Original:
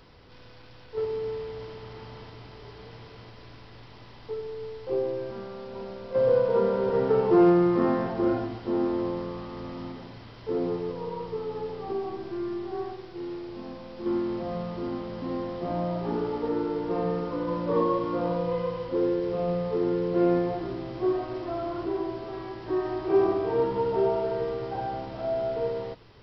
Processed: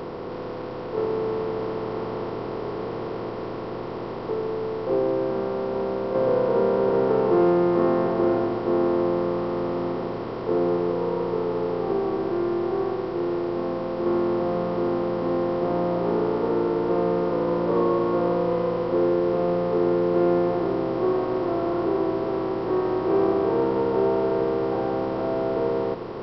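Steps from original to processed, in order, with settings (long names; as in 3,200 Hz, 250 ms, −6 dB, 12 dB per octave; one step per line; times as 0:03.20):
compressor on every frequency bin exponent 0.4
level −3 dB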